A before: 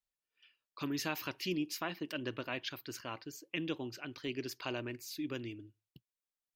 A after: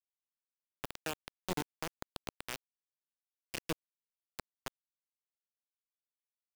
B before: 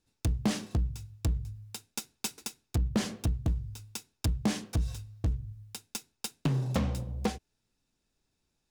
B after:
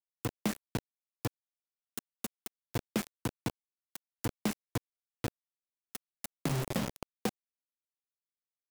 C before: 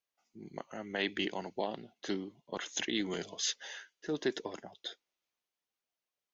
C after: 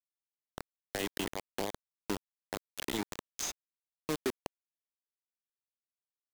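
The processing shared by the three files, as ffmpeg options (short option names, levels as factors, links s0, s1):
-filter_complex "[0:a]highpass=f=110:w=0.5412,highpass=f=110:w=1.3066,bandreject=f=50:t=h:w=6,bandreject=f=100:t=h:w=6,bandreject=f=150:t=h:w=6,afwtdn=0.01,aexciter=amount=4.3:drive=6.6:freq=6100,asplit=2[s0][s1];[s1]adelay=654,lowpass=f=1500:p=1,volume=0.126,asplit=2[s2][s3];[s3]adelay=654,lowpass=f=1500:p=1,volume=0.31,asplit=2[s4][s5];[s5]adelay=654,lowpass=f=1500:p=1,volume=0.31[s6];[s0][s2][s4][s6]amix=inputs=4:normalize=0,acrusher=bits=4:mix=0:aa=0.000001,acrossover=split=690|2500[s7][s8][s9];[s7]acompressor=threshold=0.0282:ratio=4[s10];[s8]acompressor=threshold=0.00631:ratio=4[s11];[s9]acompressor=threshold=0.0112:ratio=4[s12];[s10][s11][s12]amix=inputs=3:normalize=0,volume=1.12"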